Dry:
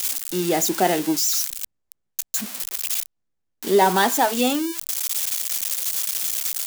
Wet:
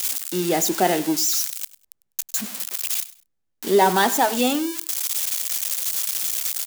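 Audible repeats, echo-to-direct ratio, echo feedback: 2, -18.0 dB, 24%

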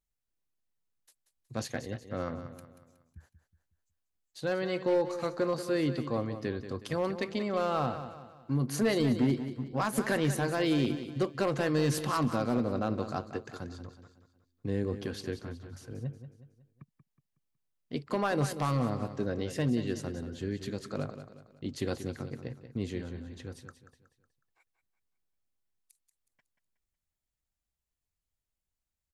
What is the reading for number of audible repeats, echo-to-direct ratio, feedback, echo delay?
4, -10.0 dB, 42%, 0.184 s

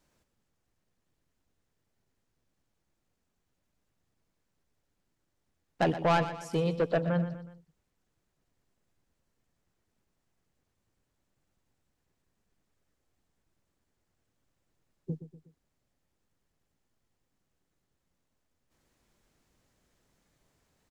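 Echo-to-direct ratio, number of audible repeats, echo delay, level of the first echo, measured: -11.0 dB, 3, 0.122 s, -12.0 dB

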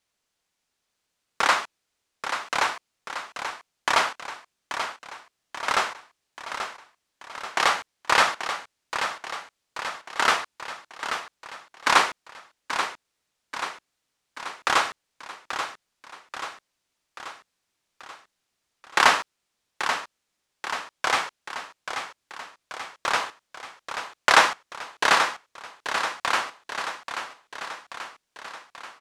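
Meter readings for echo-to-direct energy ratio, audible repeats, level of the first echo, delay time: -6.5 dB, 5, -8.5 dB, 0.834 s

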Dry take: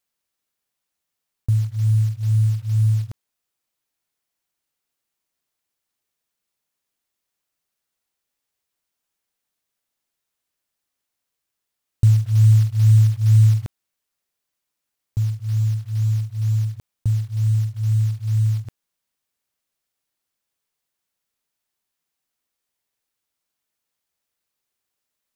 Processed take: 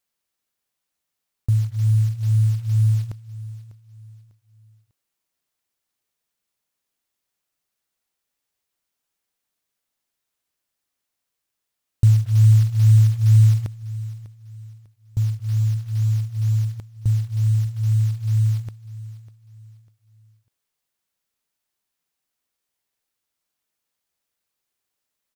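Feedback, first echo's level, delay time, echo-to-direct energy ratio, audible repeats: 34%, -17.0 dB, 0.598 s, -16.5 dB, 2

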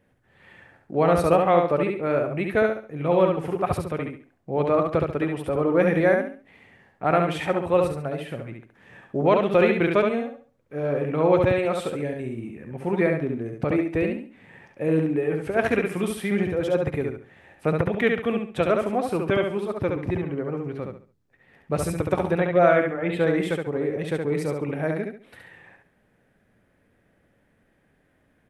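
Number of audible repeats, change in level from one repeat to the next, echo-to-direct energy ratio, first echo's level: 3, -10.5 dB, -3.5 dB, -4.0 dB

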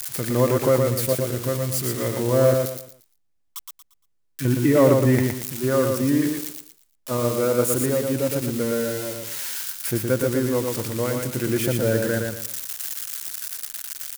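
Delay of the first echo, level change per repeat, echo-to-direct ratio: 0.116 s, -10.5 dB, -3.5 dB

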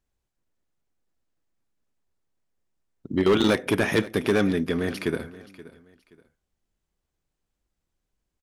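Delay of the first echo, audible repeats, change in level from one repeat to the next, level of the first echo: 0.526 s, 2, -11.0 dB, -18.5 dB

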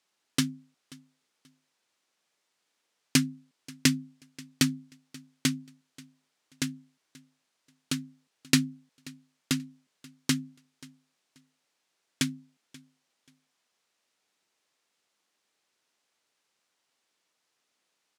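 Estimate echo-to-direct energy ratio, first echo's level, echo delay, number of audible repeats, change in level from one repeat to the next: -22.5 dB, -22.5 dB, 0.533 s, 2, -12.5 dB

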